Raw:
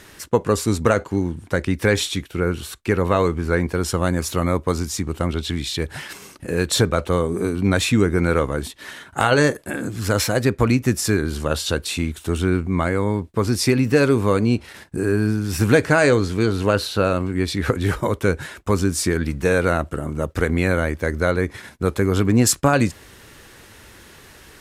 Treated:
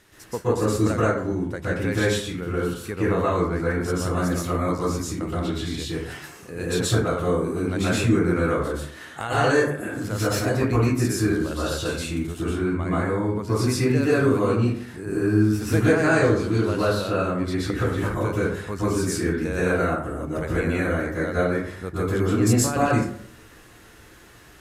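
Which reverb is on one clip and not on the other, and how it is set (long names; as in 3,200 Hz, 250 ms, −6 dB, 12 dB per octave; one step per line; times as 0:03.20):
dense smooth reverb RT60 0.62 s, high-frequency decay 0.45×, pre-delay 110 ms, DRR −8.5 dB
level −12.5 dB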